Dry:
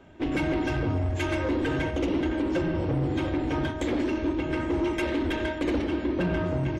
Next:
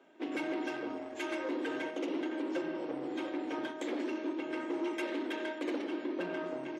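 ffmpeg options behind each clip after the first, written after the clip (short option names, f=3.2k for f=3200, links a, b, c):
-af "highpass=f=270:w=0.5412,highpass=f=270:w=1.3066,volume=-7.5dB"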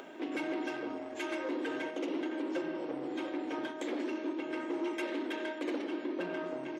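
-af "acompressor=mode=upward:threshold=-37dB:ratio=2.5"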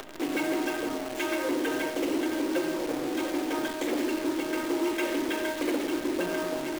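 -af "acrusher=bits=8:dc=4:mix=0:aa=0.000001,volume=7dB"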